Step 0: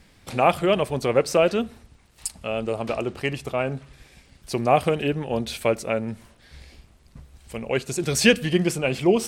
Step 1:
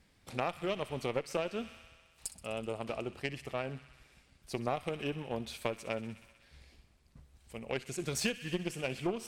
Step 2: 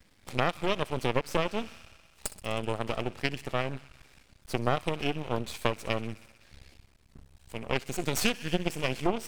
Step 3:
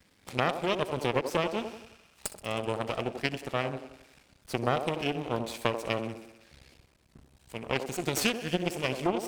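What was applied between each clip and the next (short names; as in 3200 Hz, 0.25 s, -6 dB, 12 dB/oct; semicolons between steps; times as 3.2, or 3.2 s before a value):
added harmonics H 6 -25 dB, 7 -23 dB, 8 -34 dB, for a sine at -2 dBFS; thin delay 63 ms, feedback 78%, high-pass 1600 Hz, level -15 dB; compressor 8:1, threshold -23 dBFS, peak gain reduction 13.5 dB; gain -6.5 dB
half-wave rectifier; gain +8.5 dB
HPF 86 Hz 6 dB/oct; band-limited delay 88 ms, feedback 43%, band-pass 470 Hz, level -6 dB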